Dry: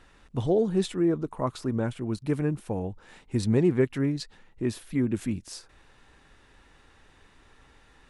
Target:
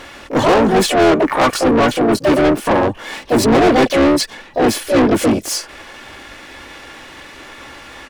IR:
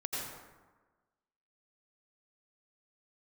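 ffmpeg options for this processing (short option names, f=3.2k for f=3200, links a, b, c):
-filter_complex "[0:a]bandreject=f=3.7k:w=8.5,aecho=1:1:3.5:0.57,asplit=3[a][b][c];[b]asetrate=55563,aresample=44100,atempo=0.793701,volume=-4dB[d];[c]asetrate=88200,aresample=44100,atempo=0.5,volume=-6dB[e];[a][d][e]amix=inputs=3:normalize=0,asplit=2[f][g];[g]adynamicsmooth=sensitivity=5.5:basefreq=560,volume=-2dB[h];[f][h]amix=inputs=2:normalize=0,asplit=2[i][j];[j]highpass=f=720:p=1,volume=30dB,asoftclip=type=tanh:threshold=-3dB[k];[i][k]amix=inputs=2:normalize=0,lowpass=f=6k:p=1,volume=-6dB,volume=-1.5dB"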